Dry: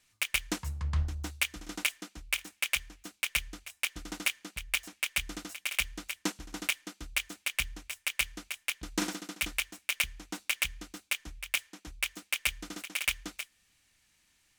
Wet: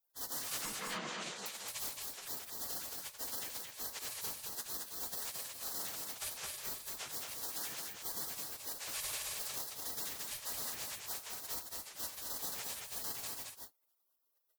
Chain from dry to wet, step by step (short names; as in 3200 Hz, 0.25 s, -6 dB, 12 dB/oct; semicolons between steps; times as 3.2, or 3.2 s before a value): phase scrambler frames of 0.1 s; spectral gate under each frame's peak -25 dB weak; limiter -39 dBFS, peak gain reduction 9.5 dB; 0.76–1.46 speaker cabinet 170–7200 Hz, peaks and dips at 180 Hz +6 dB, 290 Hz -7 dB, 470 Hz +3 dB, 5300 Hz -4 dB; tapped delay 87/221 ms -13.5/-3.5 dB; gain +9 dB